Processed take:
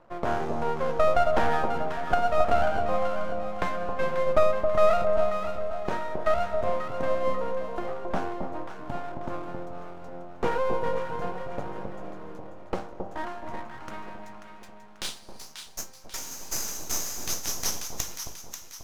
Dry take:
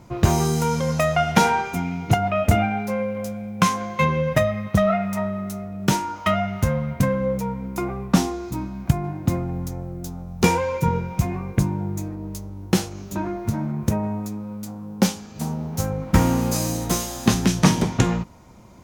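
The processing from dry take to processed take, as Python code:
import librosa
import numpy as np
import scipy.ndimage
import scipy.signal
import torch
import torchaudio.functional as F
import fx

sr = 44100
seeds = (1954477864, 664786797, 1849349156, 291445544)

p1 = fx.filter_sweep_bandpass(x, sr, from_hz=610.0, to_hz=6000.0, start_s=12.89, end_s=15.68, q=2.8)
p2 = np.maximum(p1, 0.0)
p3 = fx.hum_notches(p2, sr, base_hz=50, count=4)
p4 = p3 + fx.echo_alternate(p3, sr, ms=269, hz=950.0, feedback_pct=66, wet_db=-4.0, dry=0)
y = p4 * librosa.db_to_amplitude(5.5)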